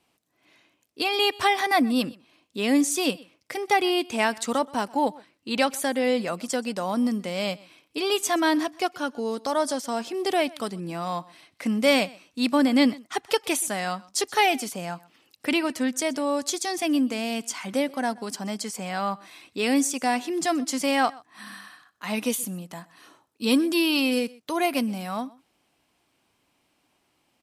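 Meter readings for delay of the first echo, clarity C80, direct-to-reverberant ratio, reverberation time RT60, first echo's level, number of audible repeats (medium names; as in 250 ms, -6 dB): 126 ms, no reverb, no reverb, no reverb, -23.0 dB, 1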